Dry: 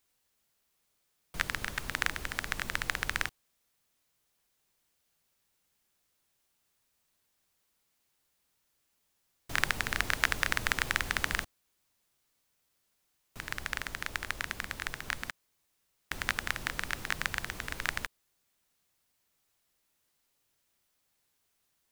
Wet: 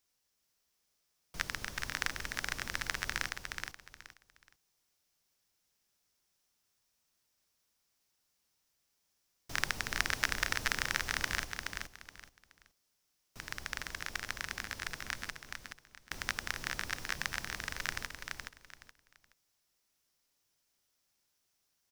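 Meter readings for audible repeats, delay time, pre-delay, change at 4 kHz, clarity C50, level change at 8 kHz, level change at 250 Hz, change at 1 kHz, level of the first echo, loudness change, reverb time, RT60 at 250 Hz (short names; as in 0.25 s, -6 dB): 3, 0.423 s, none, -1.5 dB, none, -0.5 dB, -4.0 dB, -3.5 dB, -5.0 dB, -3.5 dB, none, none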